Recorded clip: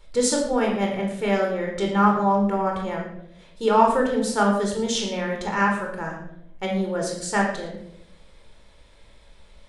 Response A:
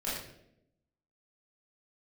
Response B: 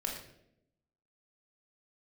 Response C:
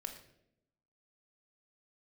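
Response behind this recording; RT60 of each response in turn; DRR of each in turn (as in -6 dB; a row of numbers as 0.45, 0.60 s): B; 0.80, 0.80, 0.80 s; -9.0, 0.0, 5.5 dB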